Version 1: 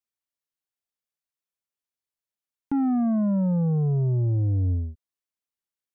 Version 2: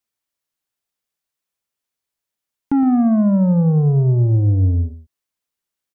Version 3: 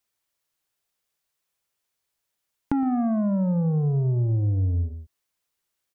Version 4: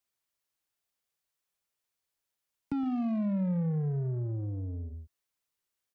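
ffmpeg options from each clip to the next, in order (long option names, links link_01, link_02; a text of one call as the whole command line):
ffmpeg -i in.wav -af "aecho=1:1:114:0.211,volume=8dB" out.wav
ffmpeg -i in.wav -af "equalizer=frequency=240:width_type=o:width=0.52:gain=-5,acompressor=threshold=-27dB:ratio=4,volume=3.5dB" out.wav
ffmpeg -i in.wav -filter_complex "[0:a]acrossover=split=140|350[link_01][link_02][link_03];[link_01]alimiter=level_in=7dB:limit=-24dB:level=0:latency=1,volume=-7dB[link_04];[link_03]asoftclip=type=tanh:threshold=-36.5dB[link_05];[link_04][link_02][link_05]amix=inputs=3:normalize=0,volume=-6dB" out.wav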